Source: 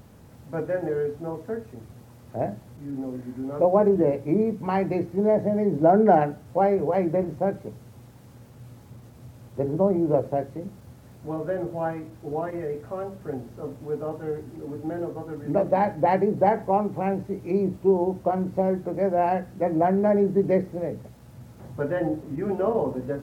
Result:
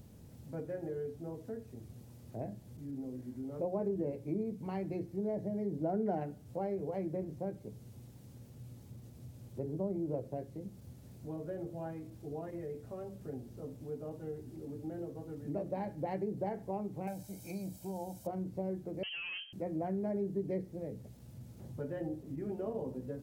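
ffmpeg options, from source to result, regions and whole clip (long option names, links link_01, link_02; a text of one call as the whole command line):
ffmpeg -i in.wav -filter_complex "[0:a]asettb=1/sr,asplit=3[link_01][link_02][link_03];[link_01]atrim=end=17.074[link_04];[link_02]atrim=start=17.07:end=18.27,asetpts=PTS-STARTPTS,afade=type=in:duration=0.004:curve=qsin,afade=type=out:start_time=1.196:duration=0.004:curve=qsin,bass=frequency=250:gain=-9,treble=frequency=4000:gain=14,aecho=1:1:1.3:0.8,atrim=end_sample=52920[link_05];[link_03]atrim=start=18.266[link_06];[link_04][link_05]acrossfade=duration=0.004:curve1=hsin:curve2=qsin[link_07];[link_07][link_06]acrossfade=duration=0.004:curve1=qsin:curve2=hsin,asettb=1/sr,asplit=3[link_08][link_09][link_10];[link_08]atrim=end=19.034[link_11];[link_09]atrim=start=19.03:end=19.53,asetpts=PTS-STARTPTS,afade=type=in:duration=0.004:curve=qsin,afade=type=out:start_time=0.496:duration=0.004:curve=qsin,asoftclip=type=hard:threshold=-26.5dB,lowpass=frequency=2800:width_type=q:width=0.5098,lowpass=frequency=2800:width_type=q:width=0.6013,lowpass=frequency=2800:width_type=q:width=0.9,lowpass=frequency=2800:width_type=q:width=2.563,afreqshift=-3300[link_12];[link_10]atrim=start=19.526[link_13];[link_11][link_12]acrossfade=duration=0.004:curve1=hsin:curve2=qsin[link_14];[link_14][link_13]acrossfade=duration=0.004:curve1=qsin:curve2=hsin,equalizer=frequency=1200:width_type=o:width=2.1:gain=-11,acompressor=threshold=-42dB:ratio=1.5,volume=-4dB" out.wav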